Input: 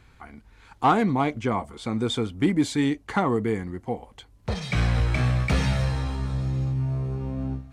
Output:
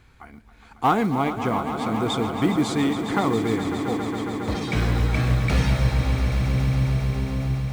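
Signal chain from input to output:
floating-point word with a short mantissa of 4 bits
echo that builds up and dies away 137 ms, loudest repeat 5, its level −12 dB

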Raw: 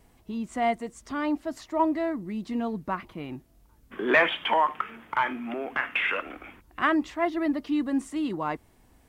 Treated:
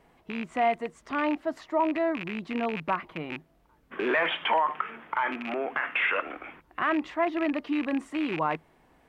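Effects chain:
loose part that buzzes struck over −37 dBFS, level −25 dBFS
parametric band 160 Hz +11 dB 0.24 octaves
brickwall limiter −19.5 dBFS, peak gain reduction 9.5 dB
bass and treble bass −13 dB, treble −15 dB
level +4 dB

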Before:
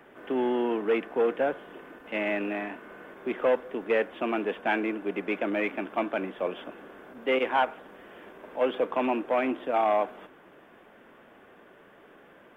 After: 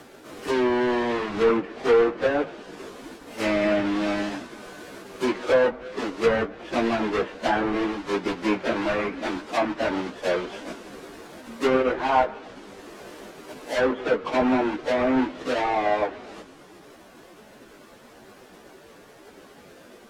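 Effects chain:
each half-wave held at its own peak
treble cut that deepens with the level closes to 1,600 Hz, closed at −19 dBFS
time stretch by phase vocoder 1.6×
level +4 dB

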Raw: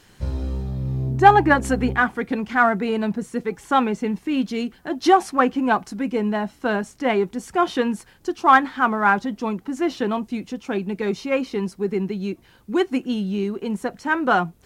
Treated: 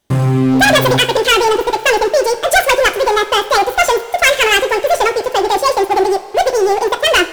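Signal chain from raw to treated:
leveller curve on the samples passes 5
wrong playback speed 7.5 ips tape played at 15 ips
coupled-rooms reverb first 0.36 s, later 3.3 s, from −16 dB, DRR 8.5 dB
level −5 dB

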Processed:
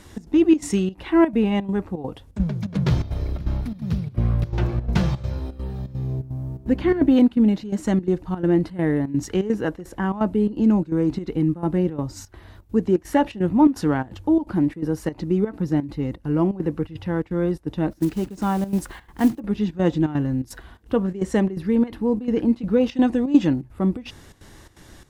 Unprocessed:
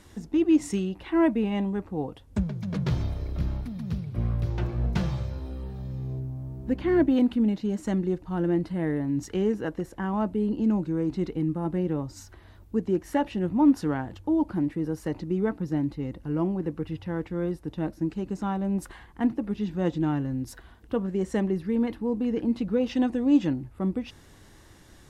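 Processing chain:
0:17.91–0:19.40: one scale factor per block 5 bits
gate pattern "xx.xxx.x" 169 BPM −12 dB
level +6.5 dB

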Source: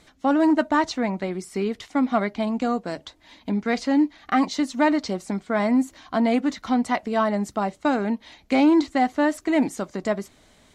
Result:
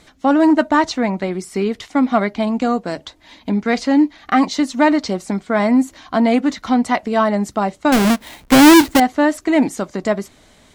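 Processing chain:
0:07.92–0:09.00: each half-wave held at its own peak
level +6 dB

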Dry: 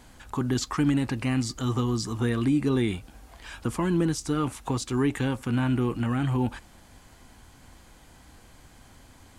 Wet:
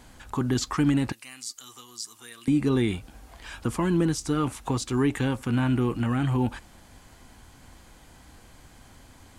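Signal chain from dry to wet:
0:01.12–0:02.48: first difference
level +1 dB

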